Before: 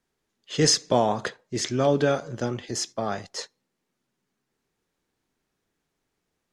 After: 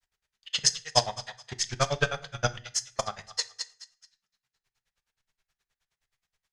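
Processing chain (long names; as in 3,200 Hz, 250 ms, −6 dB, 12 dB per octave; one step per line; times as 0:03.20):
high-shelf EQ 6,800 Hz −9.5 dB
feedback echo with a high-pass in the loop 228 ms, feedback 36%, high-pass 1,100 Hz, level −9 dB
transient designer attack +10 dB, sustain −3 dB
in parallel at +2 dB: output level in coarse steps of 22 dB
on the sum: guitar amp tone stack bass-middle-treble 10-0-10
granular cloud 71 ms, grains 9.5 per second, spray 14 ms, pitch spread up and down by 0 semitones
on a send at −12.5 dB: convolution reverb RT60 0.40 s, pre-delay 5 ms
on the sum: level +6.5 dB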